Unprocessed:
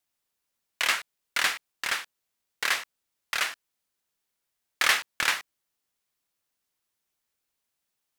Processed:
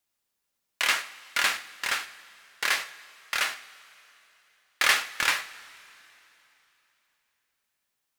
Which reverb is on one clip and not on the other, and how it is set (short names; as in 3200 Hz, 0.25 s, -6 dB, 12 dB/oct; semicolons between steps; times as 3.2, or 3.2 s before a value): two-slope reverb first 0.42 s, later 3.3 s, from -18 dB, DRR 6.5 dB